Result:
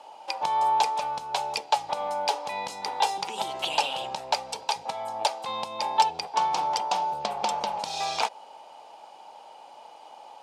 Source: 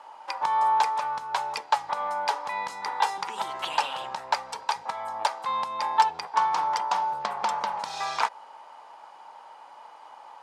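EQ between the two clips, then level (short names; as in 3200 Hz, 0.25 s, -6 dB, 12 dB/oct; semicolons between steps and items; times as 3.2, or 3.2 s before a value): band shelf 1400 Hz -11.5 dB 1.3 oct; +4.5 dB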